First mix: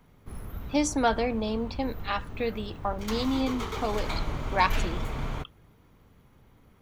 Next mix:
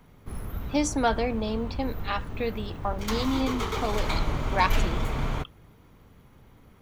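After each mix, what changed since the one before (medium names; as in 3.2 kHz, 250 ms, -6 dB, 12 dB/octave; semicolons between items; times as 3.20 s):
background +4.0 dB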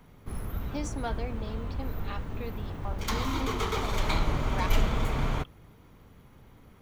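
speech -11.0 dB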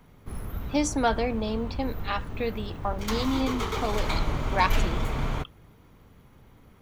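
speech +11.0 dB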